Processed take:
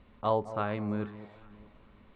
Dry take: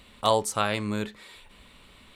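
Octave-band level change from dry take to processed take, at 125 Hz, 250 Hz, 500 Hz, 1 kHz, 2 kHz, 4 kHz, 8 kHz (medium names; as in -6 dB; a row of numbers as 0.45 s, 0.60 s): -2.0 dB, -2.5 dB, -4.5 dB, -6.0 dB, -10.0 dB, -19.5 dB, under -30 dB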